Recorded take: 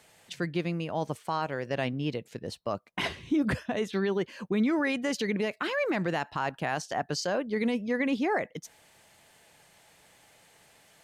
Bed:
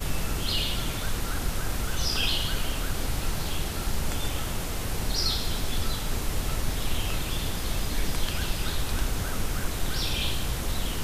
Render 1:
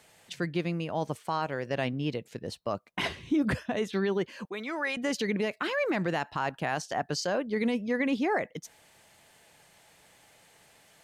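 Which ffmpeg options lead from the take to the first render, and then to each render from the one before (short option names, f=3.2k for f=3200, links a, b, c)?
-filter_complex "[0:a]asettb=1/sr,asplit=3[a][b][c];[a]atrim=end=4.454[d];[b]atrim=start=4.45:end=4.97,asetpts=PTS-STARTPTS,afade=t=in:d=0.004:c=qsin,afade=t=out:st=0.516:d=0.004:c=qsin,highpass=580[e];[c]atrim=start=4.966[f];[d][e]acrossfade=d=0.004:c1=hsin:c2=qsin[g];[g][f]acrossfade=d=0.004:c1=qsin:c2=hsin"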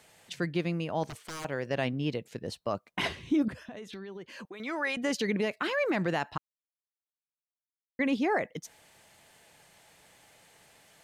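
-filter_complex "[0:a]asettb=1/sr,asplit=3[a][b][c];[a]atrim=end=1.034[d];[b]atrim=start=1.03:end=1.45,asetpts=PTS-STARTPTS,afade=t=in:d=0.004:c=qsin,afade=t=out:st=0.416:d=0.004:c=qsin,aeval=exprs='0.0188*(abs(mod(val(0)/0.0188+3,4)-2)-1)':c=same[e];[c]atrim=start=1.446[f];[d][e]acrossfade=d=0.004:c1=hsin:c2=qsin[g];[g][f]acrossfade=d=0.004:c1=qsin:c2=hsin,asettb=1/sr,asplit=3[h][i][j];[h]atrim=end=3.484[k];[i]atrim=start=3.48:end=4.6,asetpts=PTS-STARTPTS,afade=t=in:d=0.004:c=qsin,afade=t=out:st=1.116:d=0.004:c=qsin,acompressor=threshold=-40dB:ratio=6:attack=3.2:release=140:knee=1:detection=peak[l];[j]atrim=start=4.596[m];[k][l]acrossfade=d=0.004:c1=hsin:c2=qsin[n];[n][m]acrossfade=d=0.004:c1=qsin:c2=hsin,asplit=3[o][p][q];[o]atrim=end=6.38,asetpts=PTS-STARTPTS,afade=t=out:st=6.376:d=0.004:c=hsin[r];[p]atrim=start=6.38:end=7.99,asetpts=PTS-STARTPTS,volume=0[s];[q]atrim=start=7.99,asetpts=PTS-STARTPTS,afade=t=in:d=0.004:c=hsin[t];[r][s][t]concat=n=3:v=0:a=1"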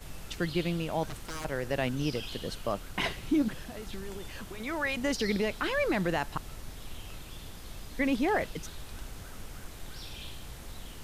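-filter_complex "[1:a]volume=-15dB[a];[0:a][a]amix=inputs=2:normalize=0"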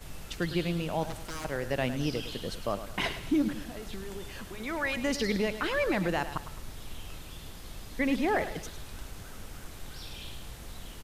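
-af "aecho=1:1:105|210|315|420:0.251|0.098|0.0382|0.0149"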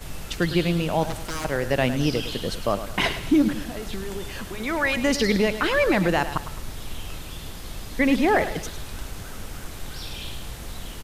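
-af "volume=8dB"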